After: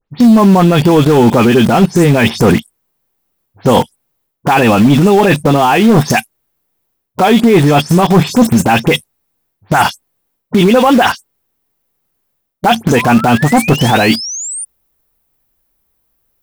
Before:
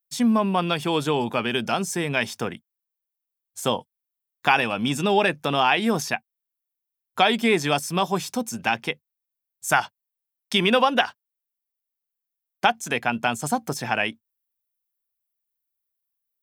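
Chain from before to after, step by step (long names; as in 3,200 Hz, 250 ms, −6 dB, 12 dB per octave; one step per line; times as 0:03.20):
every frequency bin delayed by itself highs late, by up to 109 ms
low-shelf EQ 370 Hz +3.5 dB
reversed playback
downward compressor 10 to 1, threshold −30 dBFS, peak gain reduction 16.5 dB
reversed playback
tilt shelving filter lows +7 dB, about 1,400 Hz
sound drawn into the spectrogram rise, 0:12.96–0:14.65, 930–9,500 Hz −46 dBFS
in parallel at −6 dB: bit-depth reduction 6 bits, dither none
on the sum: hard clipping −19 dBFS, distortion −19 dB
boost into a limiter +25.5 dB
level −1 dB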